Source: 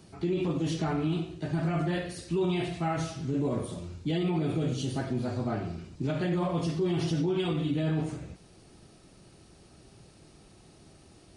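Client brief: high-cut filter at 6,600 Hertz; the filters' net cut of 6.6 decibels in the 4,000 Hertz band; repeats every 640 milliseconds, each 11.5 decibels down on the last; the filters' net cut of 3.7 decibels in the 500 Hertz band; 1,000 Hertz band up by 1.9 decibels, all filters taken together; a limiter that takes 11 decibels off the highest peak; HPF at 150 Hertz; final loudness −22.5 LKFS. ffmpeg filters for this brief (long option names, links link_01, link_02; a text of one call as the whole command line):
ffmpeg -i in.wav -af "highpass=150,lowpass=6600,equalizer=frequency=500:width_type=o:gain=-7,equalizer=frequency=1000:width_type=o:gain=6,equalizer=frequency=4000:width_type=o:gain=-9,alimiter=level_in=6dB:limit=-24dB:level=0:latency=1,volume=-6dB,aecho=1:1:640|1280|1920:0.266|0.0718|0.0194,volume=16dB" out.wav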